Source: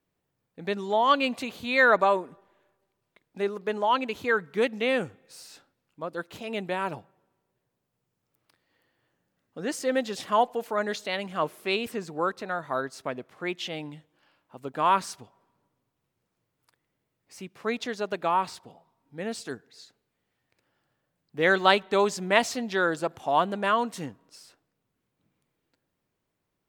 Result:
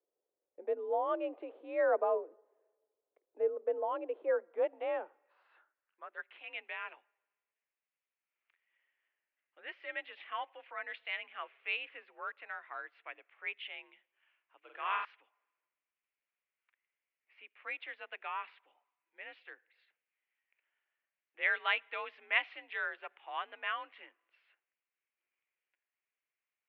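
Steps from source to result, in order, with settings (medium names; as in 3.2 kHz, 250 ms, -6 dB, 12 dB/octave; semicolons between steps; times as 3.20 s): mistuned SSB +52 Hz 270–3100 Hz; 14.59–15.05 s: flutter echo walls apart 7.7 m, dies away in 0.68 s; band-pass sweep 480 Hz -> 2.3 kHz, 4.14–6.44 s; trim -2.5 dB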